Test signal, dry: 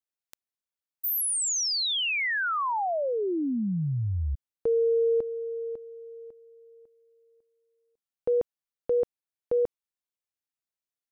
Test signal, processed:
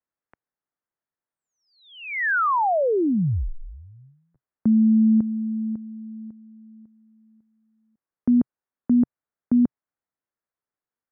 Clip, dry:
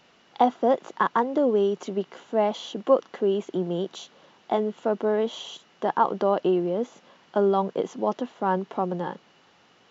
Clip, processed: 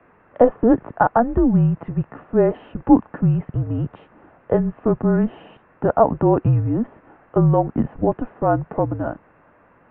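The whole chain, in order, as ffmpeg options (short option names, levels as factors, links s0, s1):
-af "equalizer=f=110:t=o:w=0.63:g=9.5,highpass=f=320:t=q:w=0.5412,highpass=f=320:t=q:w=1.307,lowpass=f=2100:t=q:w=0.5176,lowpass=f=2100:t=q:w=0.7071,lowpass=f=2100:t=q:w=1.932,afreqshift=-240,volume=2.24"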